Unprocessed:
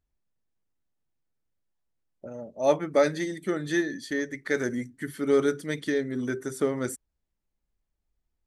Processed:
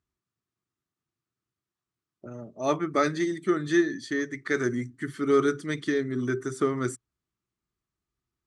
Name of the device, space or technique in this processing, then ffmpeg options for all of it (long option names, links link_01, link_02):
car door speaker: -af "highpass=86,equalizer=frequency=120:width_type=q:width=4:gain=7,equalizer=frequency=360:width_type=q:width=4:gain=6,equalizer=frequency=530:width_type=q:width=4:gain=-10,equalizer=frequency=830:width_type=q:width=4:gain=-5,equalizer=frequency=1200:width_type=q:width=4:gain=9,lowpass=frequency=8800:width=0.5412,lowpass=frequency=8800:width=1.3066"